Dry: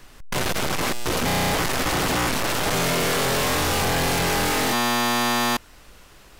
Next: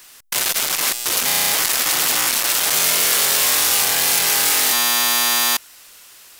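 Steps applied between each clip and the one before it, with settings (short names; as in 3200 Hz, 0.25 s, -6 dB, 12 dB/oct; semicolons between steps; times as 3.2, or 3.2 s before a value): tilt +4.5 dB/oct; gain -1.5 dB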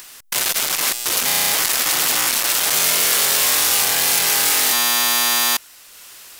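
upward compressor, threshold -34 dBFS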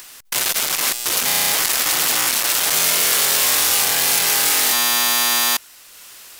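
short-mantissa float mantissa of 2-bit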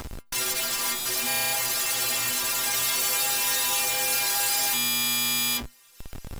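metallic resonator 120 Hz, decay 0.37 s, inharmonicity 0.008; in parallel at -5 dB: Schmitt trigger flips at -43 dBFS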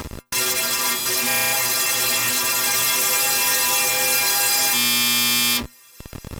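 notch comb 750 Hz; Doppler distortion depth 0.16 ms; gain +8 dB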